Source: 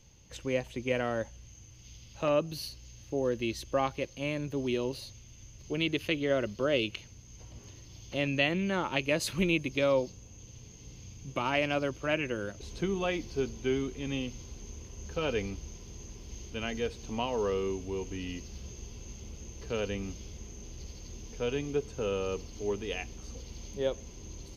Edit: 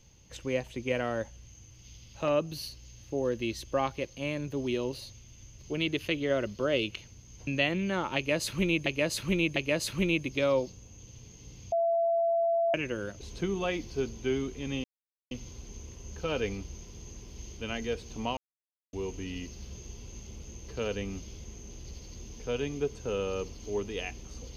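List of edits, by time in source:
7.47–8.27 cut
8.96–9.66 loop, 3 plays
11.12–12.14 bleep 673 Hz -23.5 dBFS
14.24 insert silence 0.47 s
17.3–17.86 mute

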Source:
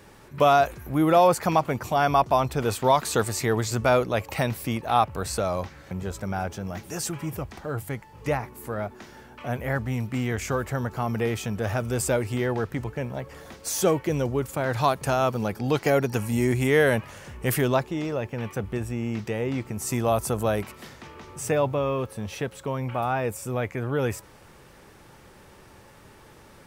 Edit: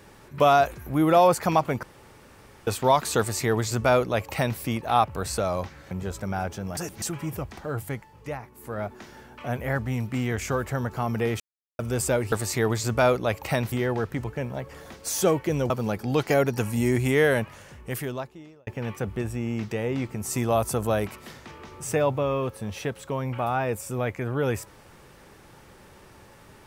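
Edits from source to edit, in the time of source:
1.83–2.67 room tone
3.19–4.59 copy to 12.32
6.77–7.02 reverse
7.93–8.86 dip -8 dB, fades 0.35 s
11.4–11.79 mute
14.3–15.26 cut
16.65–18.23 fade out

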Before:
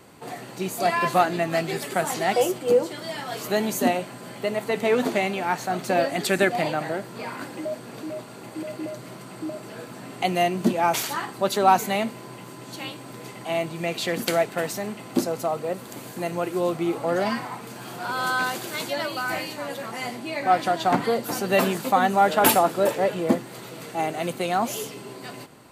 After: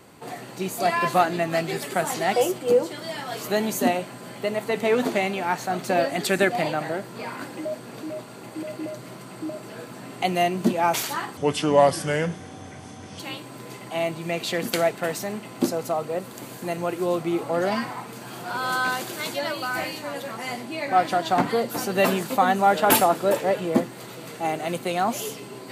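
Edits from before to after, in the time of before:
11.37–12.74 speed 75%

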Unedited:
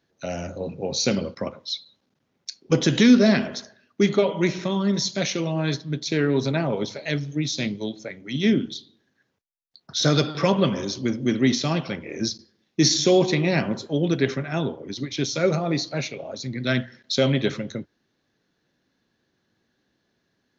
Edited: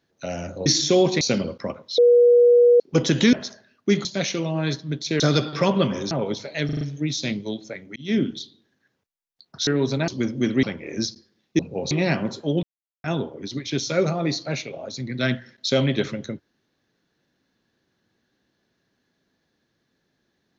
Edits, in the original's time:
0.66–0.98 swap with 12.82–13.37
1.75–2.57 bleep 482 Hz -10.5 dBFS
3.1–3.45 cut
4.17–5.06 cut
6.21–6.62 swap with 10.02–10.93
7.16 stutter 0.04 s, 5 plays
8.31–8.56 fade in
11.48–11.86 cut
14.09–14.5 mute

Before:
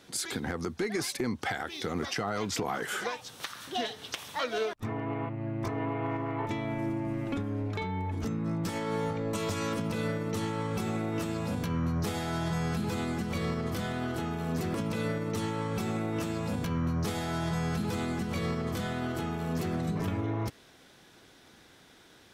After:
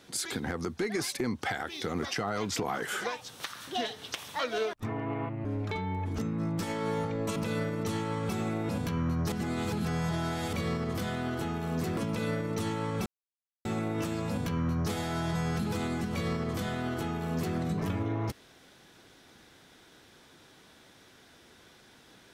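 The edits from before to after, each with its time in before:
5.45–7.51 cut
9.42–9.84 cut
11.17–11.46 cut
12.09–13.3 reverse
15.83 insert silence 0.59 s

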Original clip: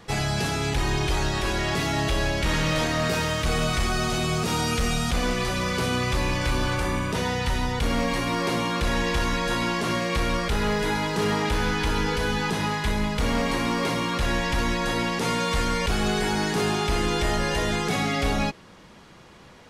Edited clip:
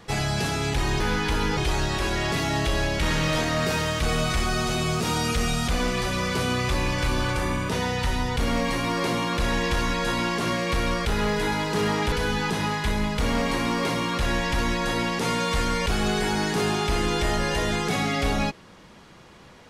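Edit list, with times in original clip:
11.55–12.12 move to 1

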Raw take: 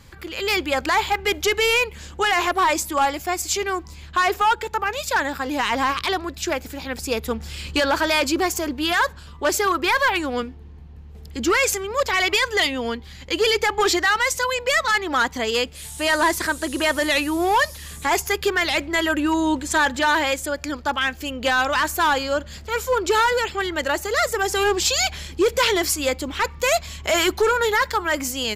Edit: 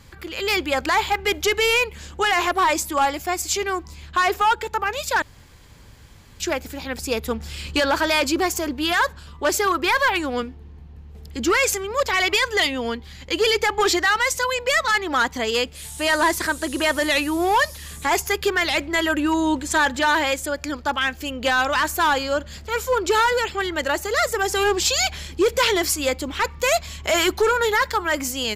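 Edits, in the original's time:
5.22–6.4 room tone

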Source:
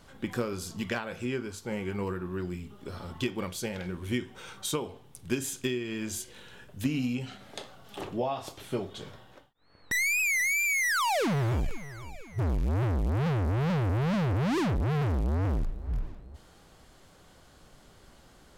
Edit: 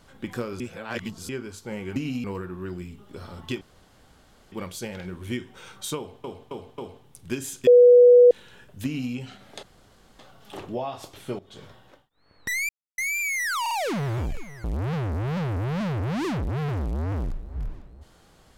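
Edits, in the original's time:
0.6–1.29 reverse
3.33 insert room tone 0.91 s
4.78–5.05 loop, 4 plays
5.67–6.31 bleep 489 Hz -9 dBFS
6.85–7.13 copy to 1.96
7.63 insert room tone 0.56 s
8.83–9.1 fade in, from -16.5 dB
10.13–10.42 mute
11.05 stutter 0.05 s, 3 plays
11.98–12.97 cut

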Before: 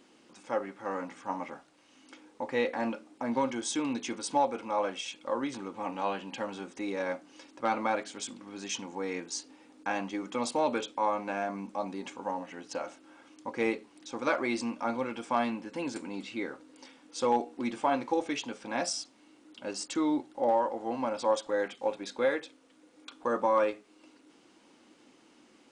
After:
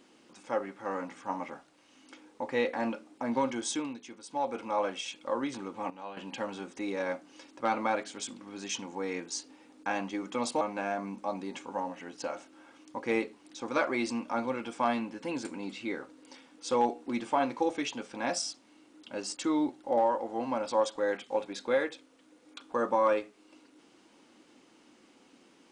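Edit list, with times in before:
3.71–4.57 dip -11.5 dB, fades 0.26 s
5.9–6.17 gain -11 dB
10.61–11.12 cut

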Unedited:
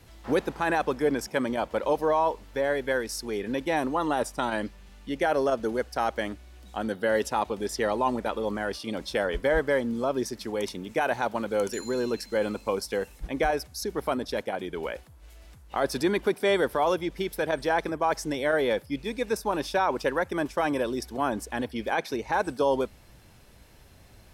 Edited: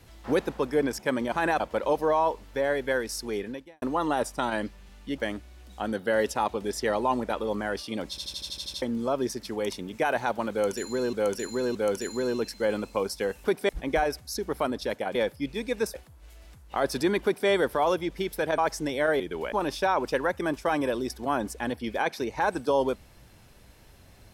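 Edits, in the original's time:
0.56–0.84 move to 1.6
3.39–3.82 fade out quadratic
5.18–6.14 cut
9.06 stutter in place 0.08 s, 9 plays
11.47–12.09 loop, 3 plays
14.62–14.94 swap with 18.65–19.44
16.23–16.48 copy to 13.16
17.58–18.03 cut

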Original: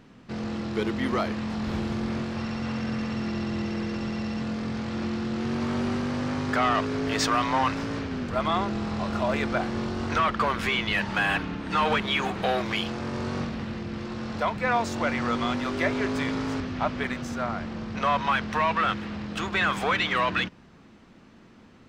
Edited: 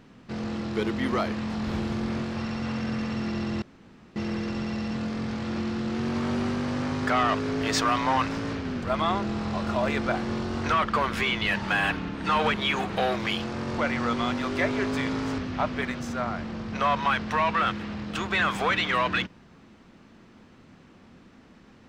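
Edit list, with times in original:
3.62 insert room tone 0.54 s
13.24–15 cut

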